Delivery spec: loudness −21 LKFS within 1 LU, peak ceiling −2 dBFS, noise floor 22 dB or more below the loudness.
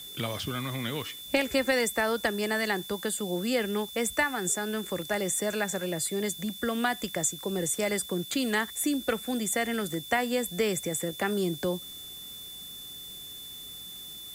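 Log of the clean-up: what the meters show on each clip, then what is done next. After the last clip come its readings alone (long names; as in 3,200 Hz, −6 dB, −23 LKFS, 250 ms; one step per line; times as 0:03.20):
interfering tone 3,500 Hz; level of the tone −42 dBFS; background noise floor −43 dBFS; target noise floor −52 dBFS; integrated loudness −30.0 LKFS; sample peak −12.0 dBFS; target loudness −21.0 LKFS
→ notch filter 3,500 Hz, Q 30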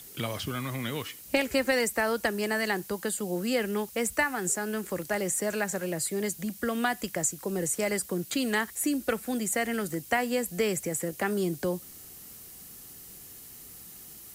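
interfering tone none found; background noise floor −47 dBFS; target noise floor −52 dBFS
→ broadband denoise 6 dB, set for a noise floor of −47 dBFS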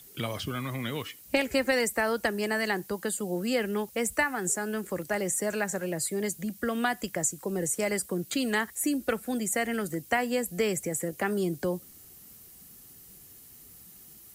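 background noise floor −52 dBFS; integrated loudness −29.5 LKFS; sample peak −12.5 dBFS; target loudness −21.0 LKFS
→ level +8.5 dB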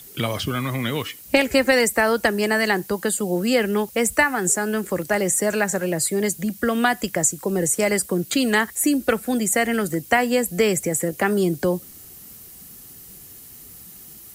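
integrated loudness −21.0 LKFS; sample peak −4.0 dBFS; background noise floor −43 dBFS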